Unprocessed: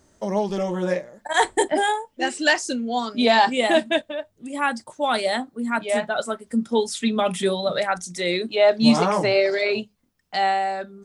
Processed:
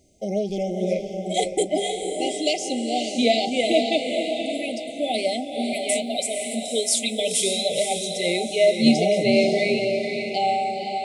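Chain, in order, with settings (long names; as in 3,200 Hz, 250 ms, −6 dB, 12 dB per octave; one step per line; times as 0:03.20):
0:05.73–0:07.72: RIAA equalisation recording
brick-wall band-stop 790–2,000 Hz
feedback delay with all-pass diffusion 510 ms, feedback 43%, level −4.5 dB
level −1 dB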